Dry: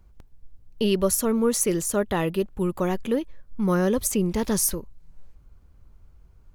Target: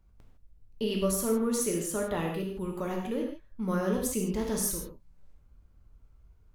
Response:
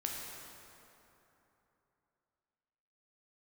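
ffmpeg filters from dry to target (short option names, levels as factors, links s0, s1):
-filter_complex "[1:a]atrim=start_sample=2205,afade=t=out:st=0.32:d=0.01,atrim=end_sample=14553,asetrate=70560,aresample=44100[s0];[0:a][s0]afir=irnorm=-1:irlink=0,volume=0.668"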